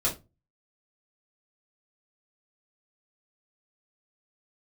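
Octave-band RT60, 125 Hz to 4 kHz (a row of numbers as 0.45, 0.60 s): 0.45, 0.35, 0.25, 0.20, 0.20, 0.20 s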